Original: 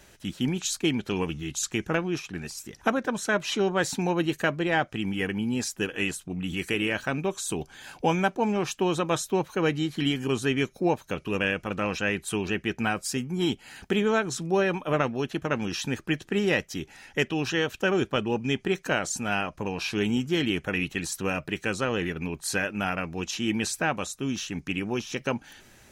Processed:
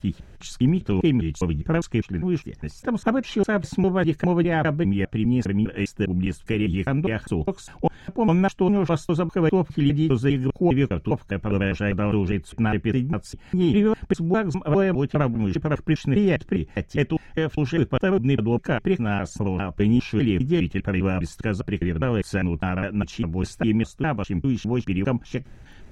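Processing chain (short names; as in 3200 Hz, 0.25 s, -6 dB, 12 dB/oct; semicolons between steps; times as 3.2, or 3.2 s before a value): slices in reverse order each 0.202 s, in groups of 2; RIAA curve playback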